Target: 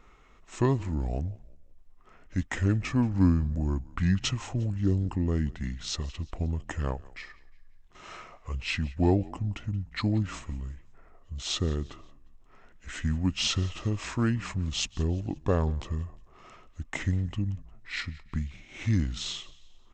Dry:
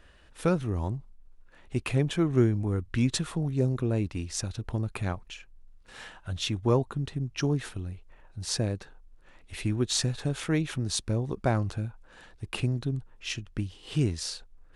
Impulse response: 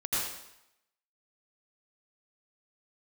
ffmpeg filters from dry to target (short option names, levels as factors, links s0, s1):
-filter_complex "[0:a]bandreject=f=6200:w=11,asetrate=32634,aresample=44100,asplit=2[s0][s1];[s1]asplit=3[s2][s3][s4];[s2]adelay=177,afreqshift=-44,volume=0.0841[s5];[s3]adelay=354,afreqshift=-88,volume=0.0355[s6];[s4]adelay=531,afreqshift=-132,volume=0.0148[s7];[s5][s6][s7]amix=inputs=3:normalize=0[s8];[s0][s8]amix=inputs=2:normalize=0"